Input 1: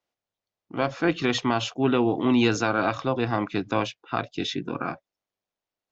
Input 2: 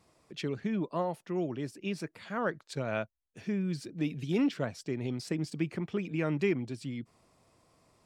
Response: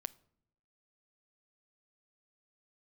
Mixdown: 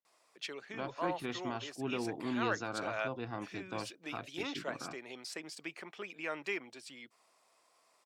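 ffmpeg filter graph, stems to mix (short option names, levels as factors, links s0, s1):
-filter_complex "[0:a]volume=0.158,asplit=2[s0][s1];[s1]volume=0.0891[s2];[1:a]highpass=730,adelay=50,volume=1[s3];[2:a]atrim=start_sample=2205[s4];[s2][s4]afir=irnorm=-1:irlink=0[s5];[s0][s3][s5]amix=inputs=3:normalize=0"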